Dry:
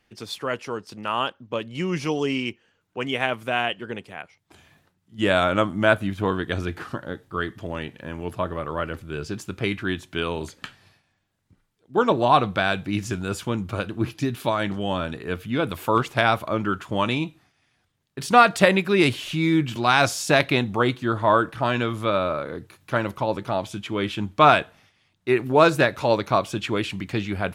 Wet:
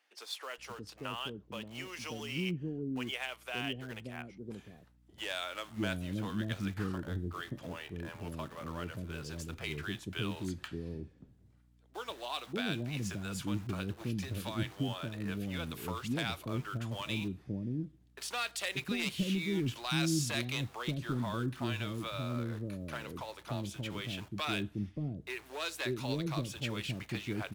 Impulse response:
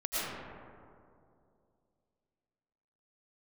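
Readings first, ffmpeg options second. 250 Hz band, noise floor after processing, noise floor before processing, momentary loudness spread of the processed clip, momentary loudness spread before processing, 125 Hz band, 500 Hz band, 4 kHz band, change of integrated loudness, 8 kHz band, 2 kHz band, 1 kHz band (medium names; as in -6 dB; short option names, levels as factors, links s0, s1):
-11.0 dB, -63 dBFS, -70 dBFS, 9 LU, 15 LU, -8.0 dB, -19.0 dB, -9.0 dB, -14.5 dB, -7.0 dB, -14.5 dB, -21.0 dB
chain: -filter_complex "[0:a]acrossover=split=300|2400[s0][s1][s2];[s1]acompressor=threshold=0.0224:ratio=6[s3];[s0][s3][s2]amix=inputs=3:normalize=0,volume=7.08,asoftclip=hard,volume=0.141,aeval=exprs='val(0)+0.00112*(sin(2*PI*60*n/s)+sin(2*PI*2*60*n/s)/2+sin(2*PI*3*60*n/s)/3+sin(2*PI*4*60*n/s)/4+sin(2*PI*5*60*n/s)/5)':c=same,asplit=2[s4][s5];[s5]aeval=exprs='(mod(50.1*val(0)+1,2)-1)/50.1':c=same,volume=0.251[s6];[s4][s6]amix=inputs=2:normalize=0,acrossover=split=480[s7][s8];[s7]adelay=580[s9];[s9][s8]amix=inputs=2:normalize=0,volume=0.422" -ar 44100 -c:a ac3 -b:a 320k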